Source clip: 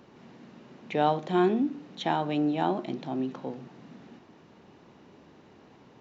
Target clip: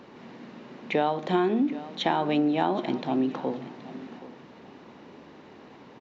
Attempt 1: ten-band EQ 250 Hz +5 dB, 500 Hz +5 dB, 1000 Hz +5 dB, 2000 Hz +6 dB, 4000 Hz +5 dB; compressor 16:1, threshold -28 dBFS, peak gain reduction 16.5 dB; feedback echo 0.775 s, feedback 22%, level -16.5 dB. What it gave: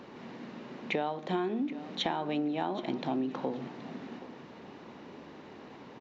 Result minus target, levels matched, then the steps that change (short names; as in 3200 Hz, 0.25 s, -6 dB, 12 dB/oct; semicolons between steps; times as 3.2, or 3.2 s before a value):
compressor: peak gain reduction +8 dB
change: compressor 16:1, threshold -19.5 dBFS, peak gain reduction 9 dB